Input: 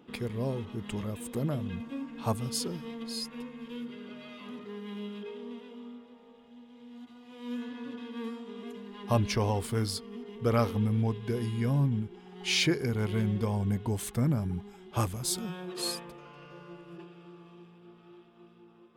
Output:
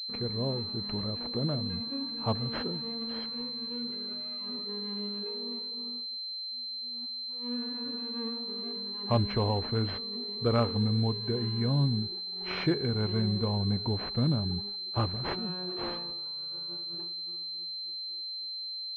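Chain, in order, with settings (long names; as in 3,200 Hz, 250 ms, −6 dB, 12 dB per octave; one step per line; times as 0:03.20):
downward expander −42 dBFS
switching amplifier with a slow clock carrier 4,100 Hz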